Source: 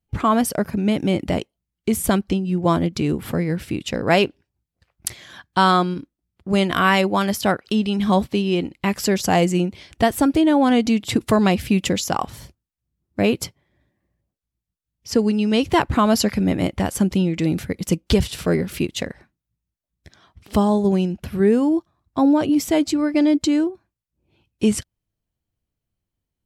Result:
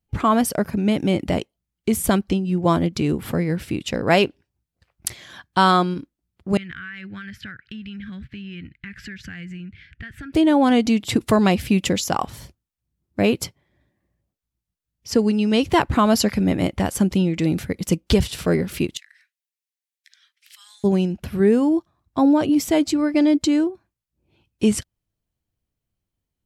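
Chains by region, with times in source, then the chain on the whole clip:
6.57–10.33 EQ curve 130 Hz 0 dB, 610 Hz -29 dB, 990 Hz -28 dB, 1600 Hz +5 dB, 5900 Hz -21 dB, 11000 Hz -28 dB + compressor 16:1, threshold -31 dBFS
18.97–20.84 steep high-pass 1700 Hz + compressor 5:1, threshold -44 dBFS
whole clip: dry

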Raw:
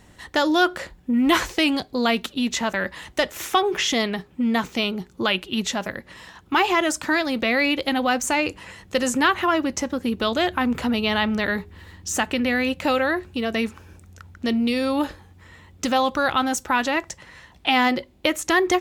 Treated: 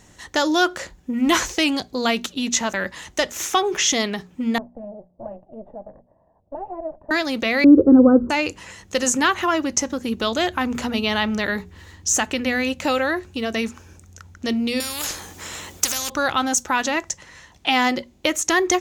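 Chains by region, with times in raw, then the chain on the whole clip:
4.58–7.11 minimum comb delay 1.1 ms + ladder low-pass 680 Hz, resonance 70% + mismatched tape noise reduction decoder only
7.64–8.3 steep low-pass 1400 Hz 72 dB/oct + resonant low shelf 570 Hz +11.5 dB, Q 3
14.8–16.1 high shelf 7400 Hz +10 dB + spectral compressor 4:1
whole clip: bell 6400 Hz +10.5 dB 0.57 oct; notches 60/120/180/240 Hz

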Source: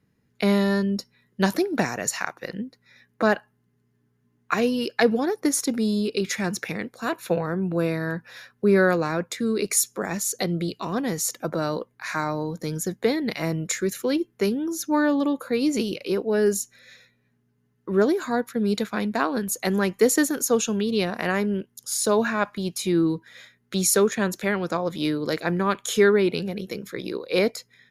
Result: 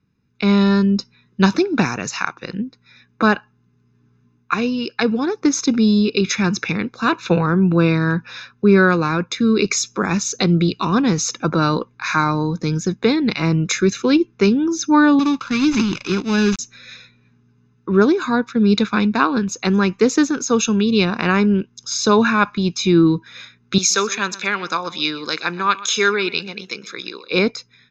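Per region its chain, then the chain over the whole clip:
15.19–16.59 switching dead time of 0.13 ms + bell 480 Hz -15 dB 0.7 oct
23.78–27.31 HPF 1300 Hz 6 dB/oct + high shelf 10000 Hz +8.5 dB + echo 0.124 s -18 dB
whole clip: elliptic low-pass 6400 Hz, stop band 40 dB; comb 0.8 ms, depth 60%; AGC gain up to 11.5 dB; gain -1 dB

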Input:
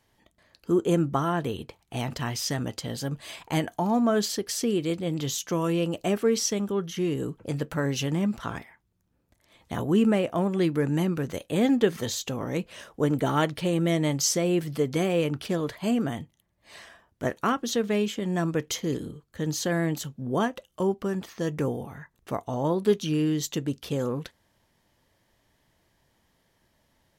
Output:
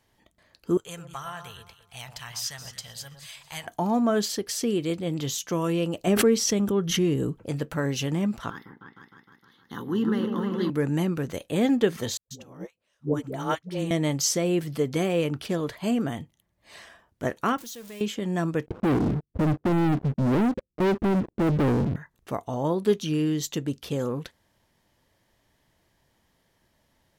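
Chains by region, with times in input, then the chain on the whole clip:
0.77–3.67 passive tone stack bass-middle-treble 10-0-10 + echo with dull and thin repeats by turns 0.111 s, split 1300 Hz, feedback 52%, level -6.5 dB
6.07–7.4 low shelf 330 Hz +6 dB + backwards sustainer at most 56 dB/s
8.5–10.7 HPF 220 Hz + fixed phaser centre 2400 Hz, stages 6 + repeats that get brighter 0.154 s, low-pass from 750 Hz, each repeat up 2 oct, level -3 dB
12.17–13.91 dynamic EQ 5700 Hz, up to +6 dB, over -56 dBFS, Q 4.1 + dispersion highs, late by 0.136 s, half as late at 370 Hz + upward expander 2.5:1, over -40 dBFS
17.58–18.01 zero-crossing step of -31.5 dBFS + pre-emphasis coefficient 0.8 + compressor 2.5:1, threshold -39 dBFS
18.66–21.96 inverse Chebyshev low-pass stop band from 2300 Hz, stop band 80 dB + dynamic EQ 170 Hz, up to -4 dB, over -40 dBFS, Q 4.2 + sample leveller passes 5
whole clip: dry

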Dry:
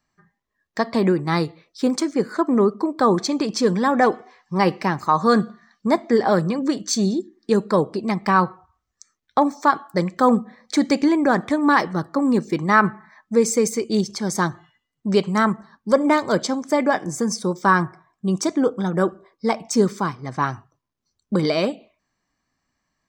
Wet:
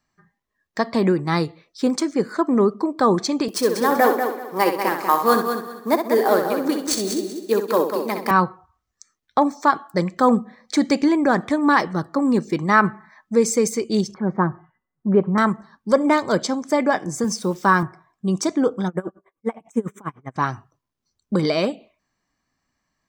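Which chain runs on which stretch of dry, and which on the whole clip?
3.48–8.31 HPF 270 Hz 24 dB/oct + sample-rate reducer 14000 Hz + multi-head echo 64 ms, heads first and third, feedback 43%, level -7.5 dB
14.14–15.38 LPF 1600 Hz 24 dB/oct + comb 5.4 ms, depth 39%
17.24–17.83 HPF 64 Hz 24 dB/oct + requantised 8-bit, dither none
18.88–20.36 Butterworth band-stop 4600 Hz, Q 1.1 + dB-linear tremolo 10 Hz, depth 29 dB
whole clip: dry

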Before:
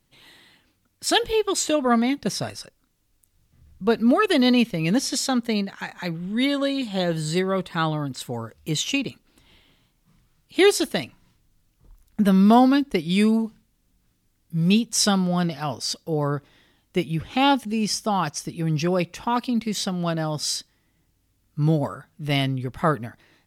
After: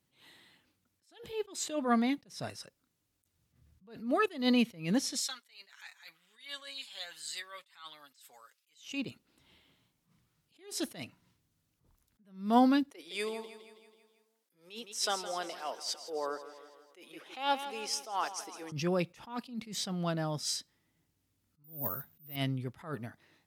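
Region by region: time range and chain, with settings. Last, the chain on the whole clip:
5.2–8.8 Bessel high-pass 2400 Hz + comb 7.1 ms, depth 58%
12.91–18.72 HPF 400 Hz 24 dB/oct + feedback echo 0.163 s, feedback 55%, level -13.5 dB
21.64–22.36 low shelf 150 Hz +7 dB + careless resampling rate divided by 3×, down none, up zero stuff
whole clip: HPF 83 Hz; attack slew limiter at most 140 dB/s; gain -8 dB

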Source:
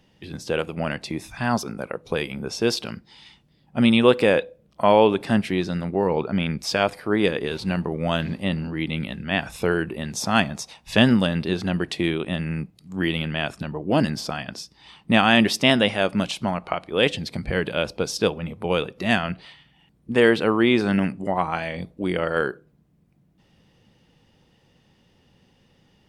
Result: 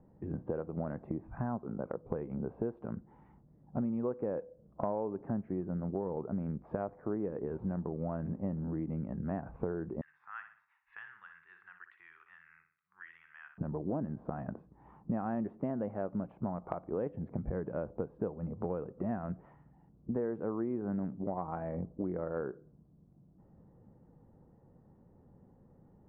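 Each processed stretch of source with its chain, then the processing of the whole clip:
10.01–13.58 inverse Chebyshev high-pass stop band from 650 Hz, stop band 50 dB + flutter echo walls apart 10.4 m, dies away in 0.41 s + three-band squash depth 40%
whole clip: Bessel low-pass 780 Hz, order 6; compressor 6:1, threshold -33 dBFS

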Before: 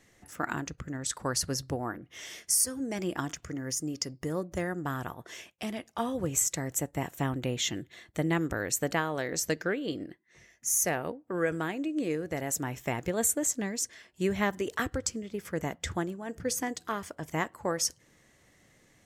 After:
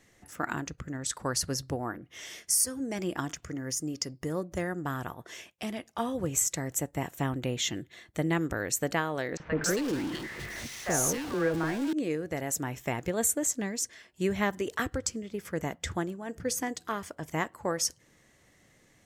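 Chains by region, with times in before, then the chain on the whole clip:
9.37–11.93 zero-crossing step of -30.5 dBFS + high shelf 9200 Hz -9.5 dB + three bands offset in time mids, lows, highs 30/270 ms, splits 670/2300 Hz
whole clip: dry

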